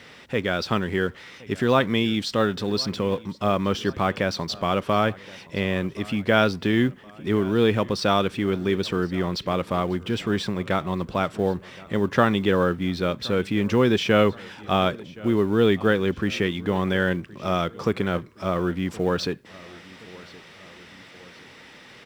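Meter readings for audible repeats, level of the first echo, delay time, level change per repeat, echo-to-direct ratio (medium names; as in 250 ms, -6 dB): 2, -21.5 dB, 1071 ms, -6.0 dB, -20.5 dB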